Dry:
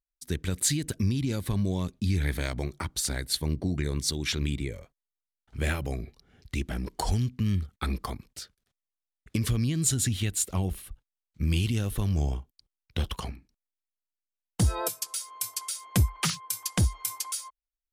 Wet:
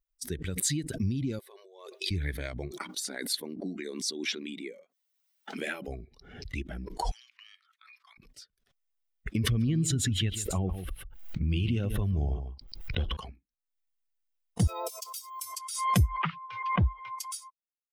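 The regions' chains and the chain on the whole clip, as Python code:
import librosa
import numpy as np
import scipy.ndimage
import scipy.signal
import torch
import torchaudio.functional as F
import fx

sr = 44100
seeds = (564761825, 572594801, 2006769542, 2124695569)

y = fx.chain(x, sr, fx.brickwall_highpass(low_hz=360.0),
    fx.over_compress(threshold_db=-44.0, ratio=-1.0), at=(1.39, 2.11))
y = fx.chain(y, sr, fx.brickwall_highpass(low_hz=170.0),
    fx.band_squash(depth_pct=40), at=(2.71, 5.88))
y = fx.chain(y, sr, fx.highpass(hz=1200.0, slope=24),
    fx.high_shelf(hz=8900.0, db=-11.5),
    fx.over_compress(threshold_db=-49.0, ratio=-1.0), at=(7.11, 8.18))
y = fx.chain(y, sr, fx.peak_eq(hz=9500.0, db=-8.5, octaves=2.1),
    fx.echo_single(ms=142, db=-11.0),
    fx.env_flatten(amount_pct=50), at=(9.36, 13.17))
y = fx.chain(y, sr, fx.highpass(hz=350.0, slope=12),
    fx.resample_bad(factor=2, down='filtered', up='hold'),
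    fx.peak_eq(hz=1600.0, db=-15.0, octaves=0.31), at=(14.67, 15.42))
y = fx.chain(y, sr, fx.lowpass(hz=2800.0, slope=24),
    fx.dynamic_eq(hz=1000.0, q=2.1, threshold_db=-49.0, ratio=4.0, max_db=6), at=(16.17, 17.19))
y = fx.bin_expand(y, sr, power=1.5)
y = fx.high_shelf(y, sr, hz=10000.0, db=-8.0)
y = fx.pre_swell(y, sr, db_per_s=65.0)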